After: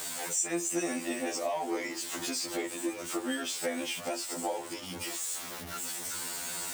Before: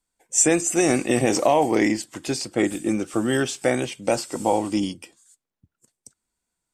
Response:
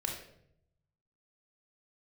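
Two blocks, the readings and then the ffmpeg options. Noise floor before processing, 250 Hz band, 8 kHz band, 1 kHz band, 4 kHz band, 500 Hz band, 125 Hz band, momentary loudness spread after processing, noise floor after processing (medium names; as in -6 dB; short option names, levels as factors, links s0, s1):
-85 dBFS, -13.0 dB, -7.0 dB, -11.5 dB, -4.0 dB, -13.0 dB, -19.5 dB, 6 LU, -42 dBFS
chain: -af "aeval=exprs='val(0)+0.5*0.0473*sgn(val(0))':c=same,highpass=f=380:p=1,acompressor=threshold=0.0251:ratio=2.5,afftfilt=real='re*2*eq(mod(b,4),0)':imag='im*2*eq(mod(b,4),0)':win_size=2048:overlap=0.75"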